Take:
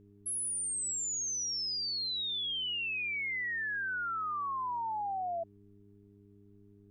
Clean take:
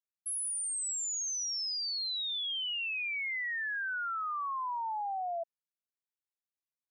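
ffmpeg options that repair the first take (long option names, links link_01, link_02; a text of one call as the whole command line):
ffmpeg -i in.wav -af "bandreject=frequency=101.3:width_type=h:width=4,bandreject=frequency=202.6:width_type=h:width=4,bandreject=frequency=303.9:width_type=h:width=4,bandreject=frequency=405.2:width_type=h:width=4,agate=range=-21dB:threshold=-51dB" out.wav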